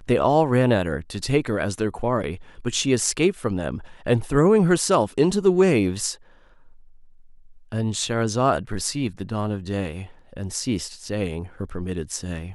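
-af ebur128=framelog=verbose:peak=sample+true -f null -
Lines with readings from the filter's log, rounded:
Integrated loudness:
  I:         -22.9 LUFS
  Threshold: -33.5 LUFS
Loudness range:
  LRA:         8.0 LU
  Threshold: -43.4 LUFS
  LRA low:   -28.4 LUFS
  LRA high:  -20.4 LUFS
Sample peak:
  Peak:       -5.1 dBFS
True peak:
  Peak:       -4.9 dBFS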